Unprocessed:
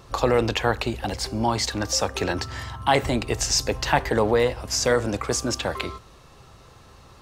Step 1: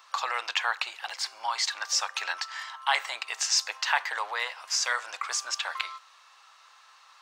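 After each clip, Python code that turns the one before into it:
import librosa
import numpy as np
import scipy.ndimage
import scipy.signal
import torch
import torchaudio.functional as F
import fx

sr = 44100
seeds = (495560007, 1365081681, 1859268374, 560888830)

y = scipy.signal.sosfilt(scipy.signal.butter(4, 1000.0, 'highpass', fs=sr, output='sos'), x)
y = fx.peak_eq(y, sr, hz=12000.0, db=-13.0, octaves=0.75)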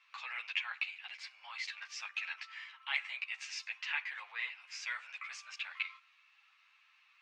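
y = fx.bandpass_q(x, sr, hz=2400.0, q=4.6)
y = fx.ensemble(y, sr)
y = F.gain(torch.from_numpy(y), 2.0).numpy()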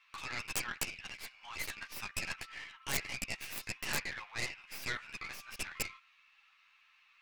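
y = fx.tracing_dist(x, sr, depth_ms=0.48)
y = (np.mod(10.0 ** (24.5 / 20.0) * y + 1.0, 2.0) - 1.0) / 10.0 ** (24.5 / 20.0)
y = F.gain(torch.from_numpy(y), 1.0).numpy()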